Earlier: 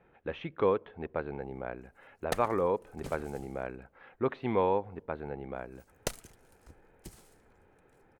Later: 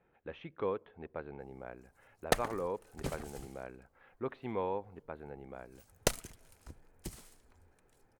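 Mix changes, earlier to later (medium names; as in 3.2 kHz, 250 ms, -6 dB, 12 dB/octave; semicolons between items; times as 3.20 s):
speech -8.0 dB; background +4.5 dB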